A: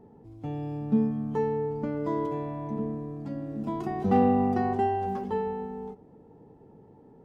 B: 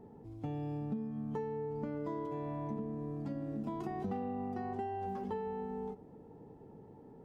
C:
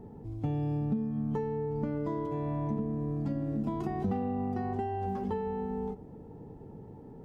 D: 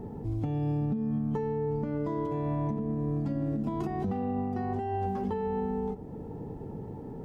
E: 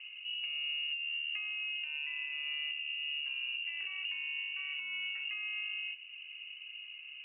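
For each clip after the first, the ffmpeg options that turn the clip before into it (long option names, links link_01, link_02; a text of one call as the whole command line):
ffmpeg -i in.wav -af "acompressor=threshold=-34dB:ratio=12,volume=-1dB" out.wav
ffmpeg -i in.wav -af "lowshelf=frequency=150:gain=10.5,volume=3.5dB" out.wav
ffmpeg -i in.wav -af "alimiter=level_in=6.5dB:limit=-24dB:level=0:latency=1:release=347,volume=-6.5dB,volume=7.5dB" out.wav
ffmpeg -i in.wav -af "lowpass=frequency=2600:width_type=q:width=0.5098,lowpass=frequency=2600:width_type=q:width=0.6013,lowpass=frequency=2600:width_type=q:width=0.9,lowpass=frequency=2600:width_type=q:width=2.563,afreqshift=-3000,volume=-8dB" out.wav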